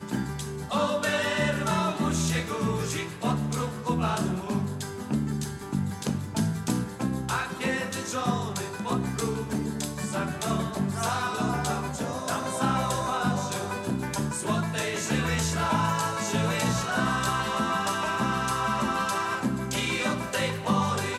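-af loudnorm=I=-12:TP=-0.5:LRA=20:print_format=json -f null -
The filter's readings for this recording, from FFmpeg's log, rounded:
"input_i" : "-27.9",
"input_tp" : "-12.9",
"input_lra" : "3.0",
"input_thresh" : "-37.9",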